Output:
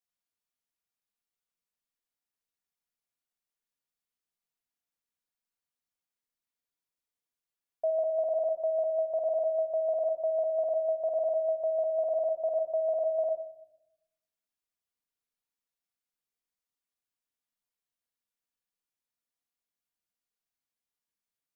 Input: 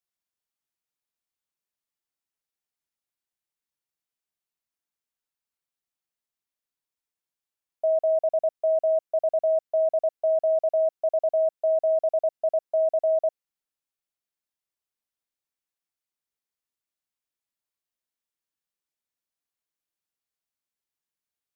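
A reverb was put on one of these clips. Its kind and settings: shoebox room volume 2300 m³, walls furnished, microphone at 1.8 m; gain -4 dB

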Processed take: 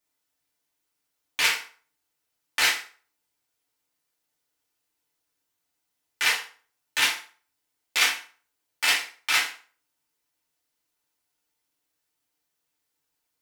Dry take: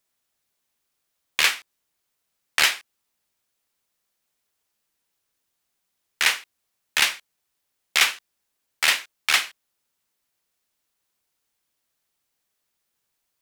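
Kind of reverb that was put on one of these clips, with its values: FDN reverb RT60 0.42 s, low-frequency decay 0.85×, high-frequency decay 0.8×, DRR -5 dB; gain -8 dB

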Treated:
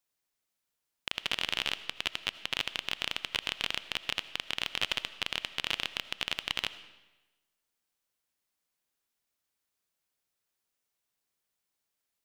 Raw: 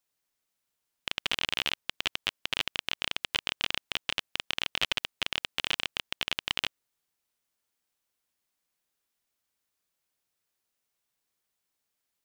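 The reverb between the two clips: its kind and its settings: digital reverb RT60 1.1 s, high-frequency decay 0.9×, pre-delay 40 ms, DRR 14 dB; gain -2 dB

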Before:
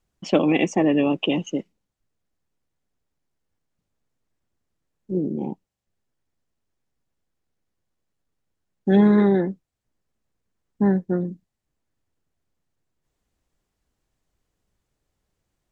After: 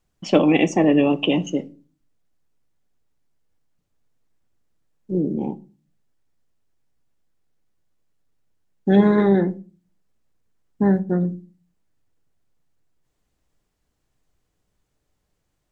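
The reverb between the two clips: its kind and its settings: shoebox room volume 160 m³, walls furnished, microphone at 0.42 m; gain +2 dB

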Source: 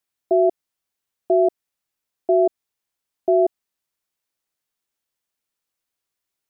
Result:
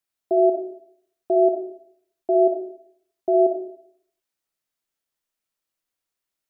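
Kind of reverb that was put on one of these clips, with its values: digital reverb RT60 0.65 s, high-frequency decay 0.45×, pre-delay 5 ms, DRR 3 dB; gain -3.5 dB

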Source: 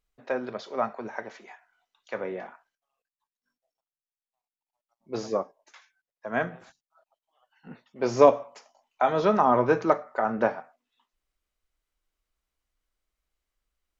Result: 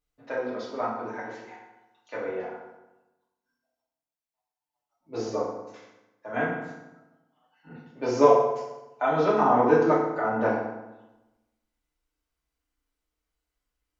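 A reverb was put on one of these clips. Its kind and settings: FDN reverb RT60 1 s, low-frequency decay 1.2×, high-frequency decay 0.7×, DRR -7 dB; gain -7.5 dB

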